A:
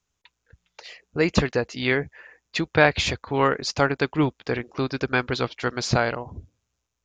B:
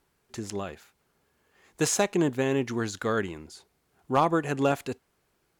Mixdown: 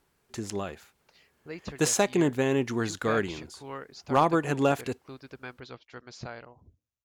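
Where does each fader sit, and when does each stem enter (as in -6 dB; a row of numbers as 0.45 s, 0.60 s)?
-19.0 dB, +0.5 dB; 0.30 s, 0.00 s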